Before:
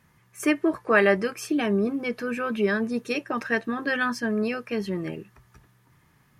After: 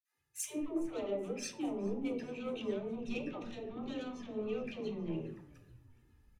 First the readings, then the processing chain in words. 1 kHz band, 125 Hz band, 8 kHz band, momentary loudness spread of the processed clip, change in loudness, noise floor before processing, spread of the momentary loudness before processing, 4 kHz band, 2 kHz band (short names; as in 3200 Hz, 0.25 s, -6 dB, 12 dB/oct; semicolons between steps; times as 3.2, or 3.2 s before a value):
-19.0 dB, -11.0 dB, -3.5 dB, 7 LU, -14.0 dB, -62 dBFS, 9 LU, -12.5 dB, -25.0 dB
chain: de-hum 110.4 Hz, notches 32; gate with hold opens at -53 dBFS; treble ducked by the level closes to 1800 Hz, closed at -21 dBFS; in parallel at -1 dB: limiter -20 dBFS, peak gain reduction 11.5 dB; on the sum: compressor 2.5:1, threshold -32 dBFS, peak gain reduction 12.5 dB; notch comb 1100 Hz; soft clip -29 dBFS, distortion -13 dB; envelope flanger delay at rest 2.9 ms, full sweep at -34 dBFS; dispersion lows, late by 0.135 s, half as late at 440 Hz; on a send: frequency-shifting echo 0.417 s, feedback 62%, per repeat -46 Hz, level -16 dB; on the sum: shoebox room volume 89 m³, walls mixed, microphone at 0.41 m; three-band expander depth 70%; gain -4 dB